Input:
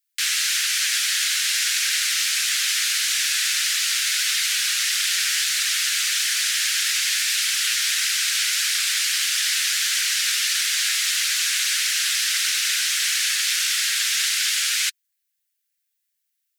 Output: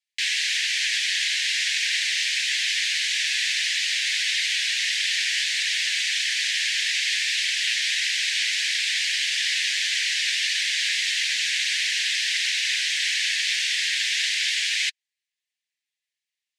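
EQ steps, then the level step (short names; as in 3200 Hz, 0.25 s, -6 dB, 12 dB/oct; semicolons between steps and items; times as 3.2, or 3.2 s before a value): steep high-pass 1700 Hz 72 dB/oct; air absorption 110 m; bell 5500 Hz -2.5 dB 0.77 oct; +3.0 dB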